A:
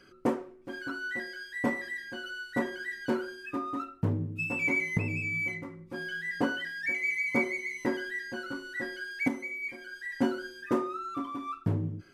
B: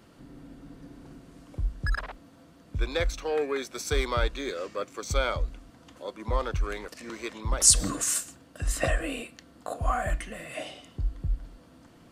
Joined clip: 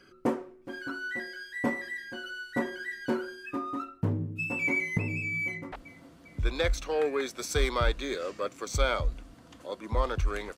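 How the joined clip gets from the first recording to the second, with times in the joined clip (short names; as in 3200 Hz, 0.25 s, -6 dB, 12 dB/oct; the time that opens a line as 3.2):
A
5.45–5.72 echo throw 0.4 s, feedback 60%, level -17 dB
5.72 switch to B from 2.08 s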